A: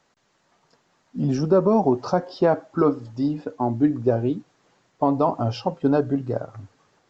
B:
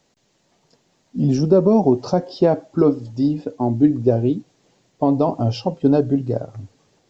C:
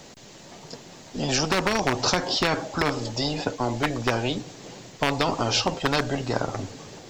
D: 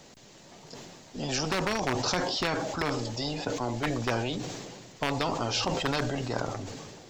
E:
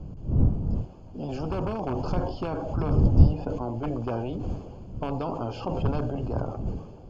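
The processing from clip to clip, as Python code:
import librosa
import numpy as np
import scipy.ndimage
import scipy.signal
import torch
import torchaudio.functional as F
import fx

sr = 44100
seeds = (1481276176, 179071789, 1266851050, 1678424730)

y1 = fx.peak_eq(x, sr, hz=1300.0, db=-12.0, octaves=1.4)
y1 = F.gain(torch.from_numpy(y1), 5.5).numpy()
y2 = np.clip(y1, -10.0 ** (-7.0 / 20.0), 10.0 ** (-7.0 / 20.0))
y2 = fx.spectral_comp(y2, sr, ratio=4.0)
y2 = F.gain(torch.from_numpy(y2), 1.5).numpy()
y3 = fx.sustainer(y2, sr, db_per_s=31.0)
y3 = F.gain(torch.from_numpy(y3), -6.5).numpy()
y4 = fx.dmg_wind(y3, sr, seeds[0], corner_hz=120.0, level_db=-28.0)
y4 = np.convolve(y4, np.full(23, 1.0 / 23))[:len(y4)]
y4 = F.gain(torch.from_numpy(y4), 1.0).numpy()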